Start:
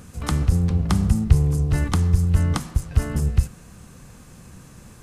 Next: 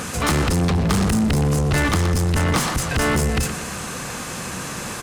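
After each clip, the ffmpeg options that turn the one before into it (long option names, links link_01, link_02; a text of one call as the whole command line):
ffmpeg -i in.wav -filter_complex "[0:a]asoftclip=type=tanh:threshold=-19dB,aecho=1:1:119|238|357|476:0.126|0.0667|0.0354|0.0187,asplit=2[link_01][link_02];[link_02]highpass=frequency=720:poles=1,volume=24dB,asoftclip=type=tanh:threshold=-17.5dB[link_03];[link_01][link_03]amix=inputs=2:normalize=0,lowpass=frequency=6000:poles=1,volume=-6dB,volume=6dB" out.wav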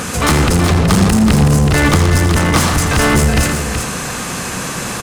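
ffmpeg -i in.wav -af "aecho=1:1:83|374:0.316|0.447,volume=6.5dB" out.wav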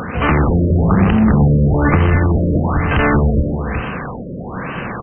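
ffmpeg -i in.wav -af "afftfilt=real='re*lt(b*sr/1024,610*pow(3200/610,0.5+0.5*sin(2*PI*1.1*pts/sr)))':imag='im*lt(b*sr/1024,610*pow(3200/610,0.5+0.5*sin(2*PI*1.1*pts/sr)))':win_size=1024:overlap=0.75,volume=-1dB" out.wav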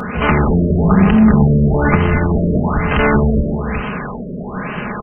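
ffmpeg -i in.wav -af "aecho=1:1:4.8:0.53" out.wav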